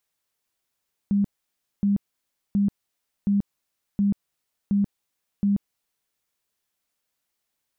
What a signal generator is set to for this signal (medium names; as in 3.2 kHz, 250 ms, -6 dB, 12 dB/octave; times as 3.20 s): tone bursts 201 Hz, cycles 27, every 0.72 s, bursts 7, -17.5 dBFS